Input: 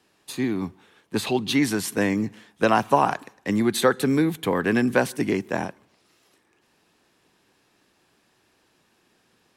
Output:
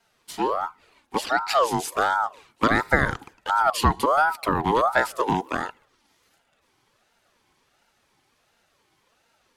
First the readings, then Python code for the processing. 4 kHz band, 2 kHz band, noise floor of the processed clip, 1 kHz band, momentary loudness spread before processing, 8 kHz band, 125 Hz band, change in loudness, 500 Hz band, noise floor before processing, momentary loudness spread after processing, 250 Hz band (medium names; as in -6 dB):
-1.0 dB, +3.0 dB, -68 dBFS, +5.0 dB, 10 LU, -2.5 dB, -2.0 dB, 0.0 dB, -2.0 dB, -66 dBFS, 10 LU, -7.5 dB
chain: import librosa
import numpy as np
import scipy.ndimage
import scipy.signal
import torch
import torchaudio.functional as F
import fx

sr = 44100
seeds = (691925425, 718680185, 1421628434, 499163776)

y = fx.env_flanger(x, sr, rest_ms=4.4, full_db=-21.5)
y = fx.ring_lfo(y, sr, carrier_hz=850.0, swing_pct=35, hz=1.4)
y = y * 10.0 ** (4.0 / 20.0)